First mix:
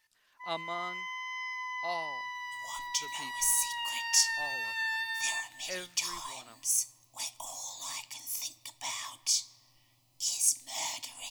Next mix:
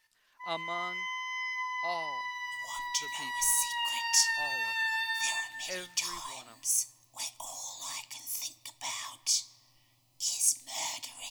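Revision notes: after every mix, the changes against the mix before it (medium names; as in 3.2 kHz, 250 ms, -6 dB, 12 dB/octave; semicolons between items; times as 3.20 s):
first sound: send +11.0 dB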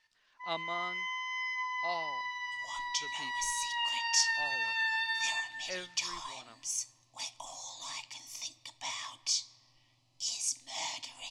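master: add Chebyshev low-pass 5 kHz, order 2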